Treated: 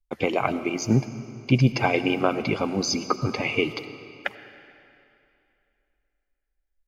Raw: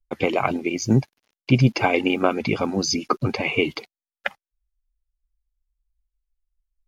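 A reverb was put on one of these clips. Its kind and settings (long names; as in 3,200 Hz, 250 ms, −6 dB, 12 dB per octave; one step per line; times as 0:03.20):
comb and all-pass reverb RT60 2.7 s, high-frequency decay 0.9×, pre-delay 50 ms, DRR 12 dB
level −2.5 dB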